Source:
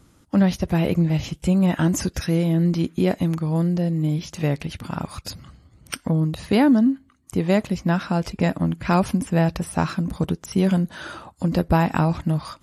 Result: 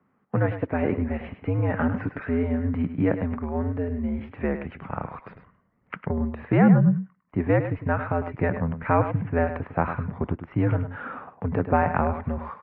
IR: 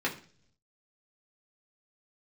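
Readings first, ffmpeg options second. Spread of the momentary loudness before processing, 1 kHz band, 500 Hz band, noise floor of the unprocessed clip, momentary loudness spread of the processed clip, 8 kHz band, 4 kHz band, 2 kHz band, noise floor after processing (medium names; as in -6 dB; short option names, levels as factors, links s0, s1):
12 LU, 0.0 dB, -1.0 dB, -57 dBFS, 10 LU, under -40 dB, under -20 dB, -0.5 dB, -68 dBFS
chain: -filter_complex "[0:a]agate=range=0.398:threshold=0.01:ratio=16:detection=peak,asubboost=boost=2:cutoff=220,highpass=f=250:t=q:w=0.5412,highpass=f=250:t=q:w=1.307,lowpass=f=2200:t=q:w=0.5176,lowpass=f=2200:t=q:w=0.7071,lowpass=f=2200:t=q:w=1.932,afreqshift=-82,asplit=2[s0][s1];[s1]aecho=0:1:103:0.316[s2];[s0][s2]amix=inputs=2:normalize=0,volume=1.12"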